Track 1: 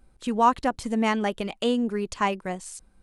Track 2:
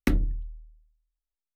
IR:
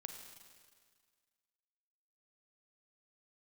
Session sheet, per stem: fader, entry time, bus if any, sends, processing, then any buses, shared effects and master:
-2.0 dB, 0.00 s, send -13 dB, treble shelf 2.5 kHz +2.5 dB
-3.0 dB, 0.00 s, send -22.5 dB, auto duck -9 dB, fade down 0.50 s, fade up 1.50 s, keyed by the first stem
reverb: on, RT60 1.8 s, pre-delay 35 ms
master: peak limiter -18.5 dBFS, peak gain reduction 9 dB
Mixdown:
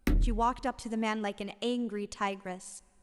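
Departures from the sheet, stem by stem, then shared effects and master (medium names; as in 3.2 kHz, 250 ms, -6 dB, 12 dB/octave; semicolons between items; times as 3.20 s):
stem 1 -2.0 dB -> -9.0 dB; stem 2 -3.0 dB -> +3.0 dB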